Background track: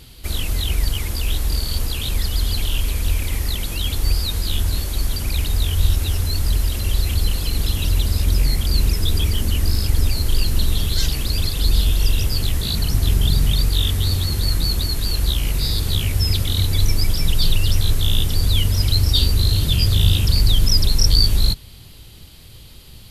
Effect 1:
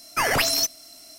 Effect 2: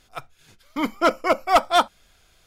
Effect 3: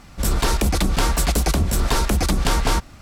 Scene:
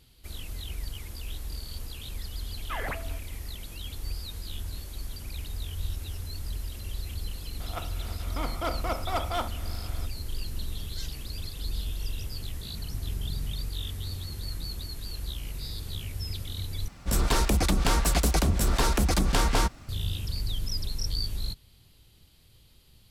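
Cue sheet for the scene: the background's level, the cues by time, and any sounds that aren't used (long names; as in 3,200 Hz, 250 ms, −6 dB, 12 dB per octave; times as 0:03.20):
background track −16 dB
0:02.53: mix in 1 −12 dB + Butterworth low-pass 2,400 Hz
0:07.60: mix in 2 −17 dB + compressor on every frequency bin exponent 0.4
0:16.88: overwrite with 3 −4.5 dB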